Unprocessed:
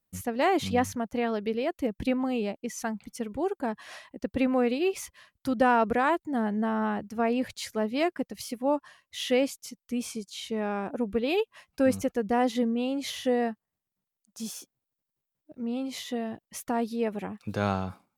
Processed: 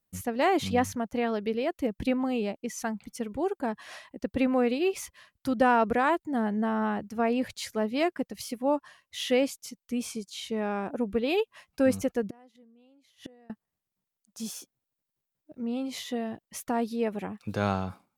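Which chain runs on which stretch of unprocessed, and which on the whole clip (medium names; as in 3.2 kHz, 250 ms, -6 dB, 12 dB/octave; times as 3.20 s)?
12.23–13.50 s: high-pass 51 Hz + inverted gate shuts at -26 dBFS, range -31 dB
whole clip: none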